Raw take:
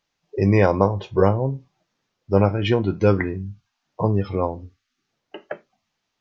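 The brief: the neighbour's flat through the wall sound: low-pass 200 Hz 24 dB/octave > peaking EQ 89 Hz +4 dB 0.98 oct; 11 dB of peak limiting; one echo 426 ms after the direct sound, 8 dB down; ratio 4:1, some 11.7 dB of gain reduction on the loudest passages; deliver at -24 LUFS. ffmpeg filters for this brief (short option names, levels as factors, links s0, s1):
-af "acompressor=threshold=0.0562:ratio=4,alimiter=limit=0.0794:level=0:latency=1,lowpass=f=200:w=0.5412,lowpass=f=200:w=1.3066,equalizer=f=89:t=o:w=0.98:g=4,aecho=1:1:426:0.398,volume=3.55"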